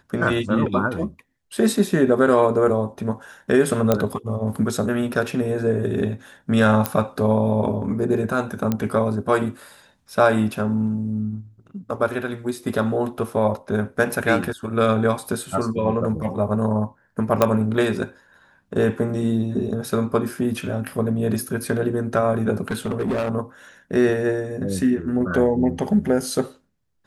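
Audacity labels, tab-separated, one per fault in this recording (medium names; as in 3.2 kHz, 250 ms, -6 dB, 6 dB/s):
3.920000	3.920000	pop -4 dBFS
6.860000	6.860000	pop -4 dBFS
8.720000	8.720000	pop -9 dBFS
17.420000	17.420000	pop -3 dBFS
22.680000	23.310000	clipped -19.5 dBFS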